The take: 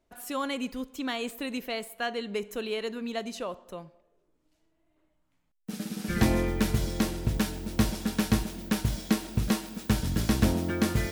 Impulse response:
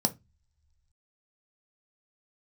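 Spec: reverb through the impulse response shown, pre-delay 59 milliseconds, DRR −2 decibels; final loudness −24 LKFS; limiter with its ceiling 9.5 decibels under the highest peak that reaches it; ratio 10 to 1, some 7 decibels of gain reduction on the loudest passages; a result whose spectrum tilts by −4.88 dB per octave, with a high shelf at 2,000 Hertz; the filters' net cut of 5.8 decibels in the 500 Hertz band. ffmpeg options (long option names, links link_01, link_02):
-filter_complex "[0:a]equalizer=frequency=500:width_type=o:gain=-8,highshelf=frequency=2000:gain=6,acompressor=threshold=-27dB:ratio=10,alimiter=limit=-23dB:level=0:latency=1,asplit=2[link_01][link_02];[1:a]atrim=start_sample=2205,adelay=59[link_03];[link_02][link_03]afir=irnorm=-1:irlink=0,volume=-5dB[link_04];[link_01][link_04]amix=inputs=2:normalize=0,volume=2dB"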